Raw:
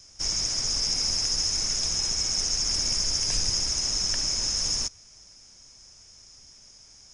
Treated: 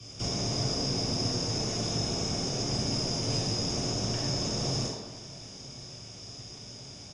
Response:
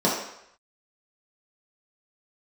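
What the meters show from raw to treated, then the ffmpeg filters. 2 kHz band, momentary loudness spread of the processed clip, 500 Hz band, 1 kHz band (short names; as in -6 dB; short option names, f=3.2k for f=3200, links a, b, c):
-3.0 dB, 14 LU, +11.0 dB, +5.0 dB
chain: -filter_complex "[0:a]acrossover=split=170|1200[a][b][c];[a]acompressor=threshold=-45dB:ratio=4[d];[b]acompressor=threshold=-50dB:ratio=4[e];[c]acompressor=threshold=-39dB:ratio=4[f];[d][e][f]amix=inputs=3:normalize=0,aecho=1:1:989:0.0708[g];[1:a]atrim=start_sample=2205,asetrate=28224,aresample=44100[h];[g][h]afir=irnorm=-1:irlink=0,volume=-7dB"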